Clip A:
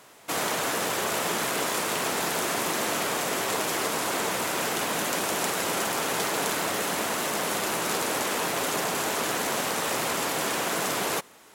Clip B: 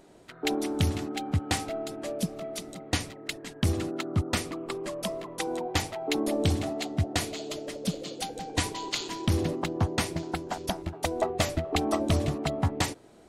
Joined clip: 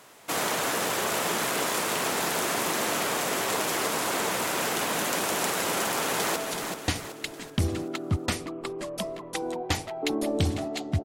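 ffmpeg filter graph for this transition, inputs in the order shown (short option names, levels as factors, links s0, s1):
-filter_complex "[0:a]apad=whole_dur=11.04,atrim=end=11.04,atrim=end=6.362[s0];[1:a]atrim=start=2.408:end=7.09[s1];[s0][s1]acrossfade=d=0.004:c1=hsin:c2=hsin,asplit=2[s2][s3];[s3]afade=t=in:st=5.88:d=0.01,afade=t=out:st=6.36:d=0.01,aecho=0:1:380|760|1140|1520|1900:0.501187|0.225534|0.10149|0.0456707|0.0205518[s4];[s2][s4]amix=inputs=2:normalize=0"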